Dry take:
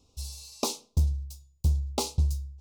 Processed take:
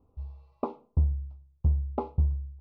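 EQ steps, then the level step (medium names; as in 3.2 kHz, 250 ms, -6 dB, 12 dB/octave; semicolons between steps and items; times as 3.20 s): low-pass 1.5 kHz 24 dB/octave; 0.0 dB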